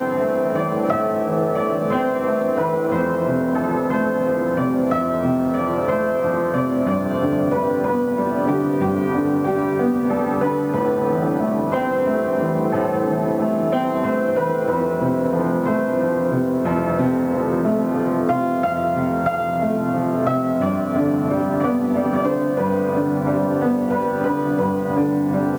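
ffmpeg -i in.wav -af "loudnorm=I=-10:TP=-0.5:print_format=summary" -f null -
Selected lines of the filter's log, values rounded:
Input Integrated:    -20.1 LUFS
Input True Peak:      -6.4 dBTP
Input LRA:             0.3 LU
Input Threshold:     -30.1 LUFS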